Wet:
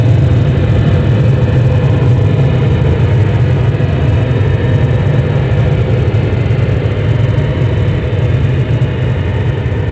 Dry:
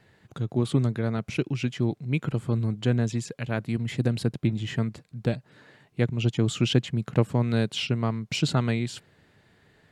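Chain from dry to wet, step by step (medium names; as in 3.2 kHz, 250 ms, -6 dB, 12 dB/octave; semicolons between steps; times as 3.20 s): low-pass 3 kHz 24 dB/octave; peaking EQ 1.6 kHz -13 dB 0.47 oct; band-stop 750 Hz, Q 12; in parallel at +0.5 dB: compressor with a negative ratio -27 dBFS, ratio -1; on the sum: feedback comb 62 Hz, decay 2 s, harmonics all, mix 80%; Paulstretch 39×, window 0.05 s, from 5.57 s; on a send: thinning echo 436 ms, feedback 75%, high-pass 420 Hz, level -18.5 dB; on the sum: ever faster or slower copies 93 ms, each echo -4 st, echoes 3, each echo -6 dB; feedback delay 89 ms, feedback 23%, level -8 dB; loudness maximiser +36 dB; trim -1 dB; µ-law 128 kbps 16 kHz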